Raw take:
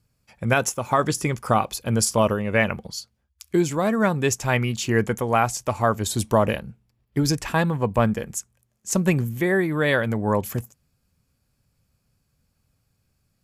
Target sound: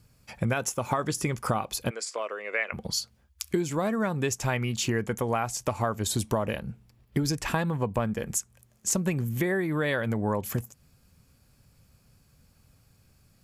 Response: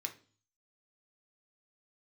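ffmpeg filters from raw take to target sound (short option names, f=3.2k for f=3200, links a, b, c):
-filter_complex "[0:a]acompressor=threshold=-34dB:ratio=6,asplit=3[a][b][c];[a]afade=t=out:st=1.89:d=0.02[d];[b]highpass=f=450:w=0.5412,highpass=f=450:w=1.3066,equalizer=f=590:t=q:w=4:g=-4,equalizer=f=880:t=q:w=4:g=-8,equalizer=f=2.1k:t=q:w=4:g=7,equalizer=f=3.1k:t=q:w=4:g=-5,equalizer=f=5.9k:t=q:w=4:g=-8,lowpass=f=7.4k:w=0.5412,lowpass=f=7.4k:w=1.3066,afade=t=in:st=1.89:d=0.02,afade=t=out:st=2.72:d=0.02[e];[c]afade=t=in:st=2.72:d=0.02[f];[d][e][f]amix=inputs=3:normalize=0,volume=8.5dB"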